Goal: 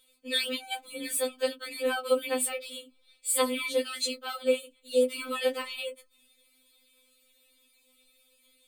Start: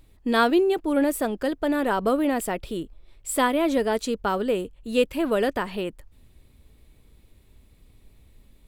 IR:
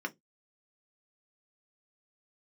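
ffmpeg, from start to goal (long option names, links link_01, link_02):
-filter_complex "[1:a]atrim=start_sample=2205,asetrate=70560,aresample=44100[link_01];[0:a][link_01]afir=irnorm=-1:irlink=0,crystalizer=i=8:c=0,afftfilt=real='re*3.46*eq(mod(b,12),0)':imag='im*3.46*eq(mod(b,12),0)':win_size=2048:overlap=0.75,volume=-6dB"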